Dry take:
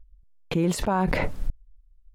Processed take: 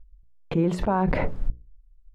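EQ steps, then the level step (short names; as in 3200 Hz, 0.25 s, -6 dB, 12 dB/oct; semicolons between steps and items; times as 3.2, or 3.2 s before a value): high shelf 2400 Hz -12 dB; high shelf 8800 Hz -11.5 dB; notches 60/120/180/240/300/360/420/480/540 Hz; +2.0 dB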